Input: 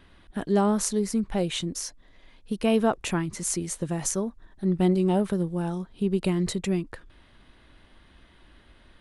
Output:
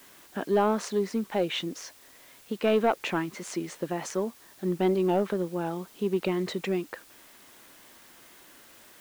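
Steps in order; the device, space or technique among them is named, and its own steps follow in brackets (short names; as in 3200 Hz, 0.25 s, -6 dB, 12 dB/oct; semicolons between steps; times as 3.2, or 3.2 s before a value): tape answering machine (BPF 310–3300 Hz; soft clip -17 dBFS, distortion -18 dB; wow and flutter; white noise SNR 25 dB); gain +3 dB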